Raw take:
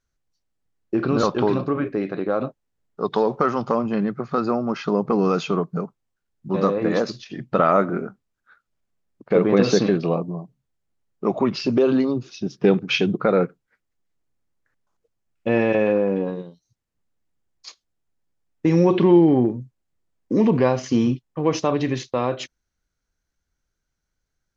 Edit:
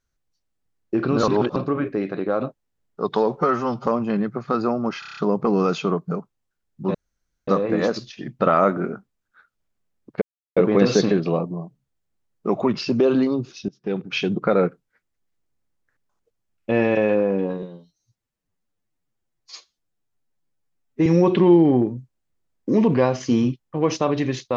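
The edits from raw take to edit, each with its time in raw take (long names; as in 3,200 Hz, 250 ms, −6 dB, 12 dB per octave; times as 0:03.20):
0:01.28–0:01.56: reverse
0:03.37–0:03.70: time-stretch 1.5×
0:04.83: stutter 0.03 s, 7 plays
0:06.60: splice in room tone 0.53 s
0:09.34: splice in silence 0.35 s
0:12.46–0:13.25: fade in, from −21.5 dB
0:16.40–0:18.69: time-stretch 1.5×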